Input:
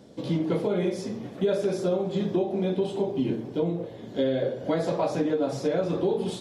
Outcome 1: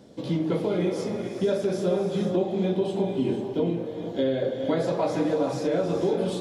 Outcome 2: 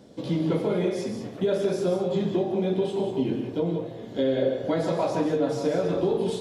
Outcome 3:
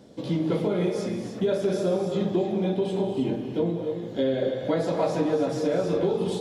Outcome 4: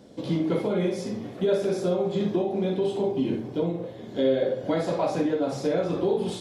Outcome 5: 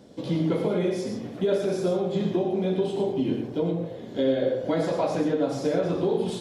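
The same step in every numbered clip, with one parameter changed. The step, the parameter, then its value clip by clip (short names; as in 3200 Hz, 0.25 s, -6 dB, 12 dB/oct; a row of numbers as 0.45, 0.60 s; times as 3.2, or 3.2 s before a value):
non-linear reverb, gate: 510, 210, 330, 80, 140 ms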